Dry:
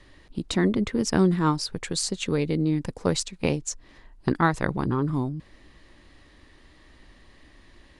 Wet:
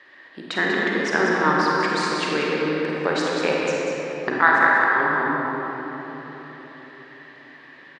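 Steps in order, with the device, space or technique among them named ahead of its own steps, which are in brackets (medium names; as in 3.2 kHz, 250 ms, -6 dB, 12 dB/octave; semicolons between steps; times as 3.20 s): 4.39–4.97 s: high-pass 590 Hz 24 dB/octave; station announcement (band-pass 460–3600 Hz; peaking EQ 1.7 kHz +10 dB 0.5 oct; loudspeakers at several distances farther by 18 m -11 dB, 66 m -6 dB; reverberation RT60 4.3 s, pre-delay 33 ms, DRR -3 dB); trim +2.5 dB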